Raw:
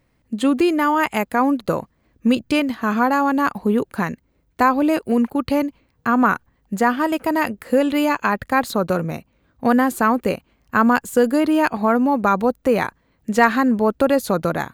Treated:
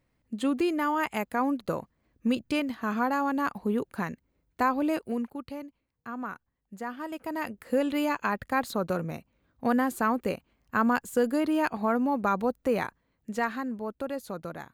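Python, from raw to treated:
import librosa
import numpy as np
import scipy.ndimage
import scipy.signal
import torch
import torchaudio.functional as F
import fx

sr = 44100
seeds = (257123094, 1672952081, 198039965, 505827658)

y = fx.gain(x, sr, db=fx.line((4.95, -9.5), (5.58, -20.0), (6.74, -20.0), (7.77, -9.0), (12.78, -9.0), (13.77, -17.0)))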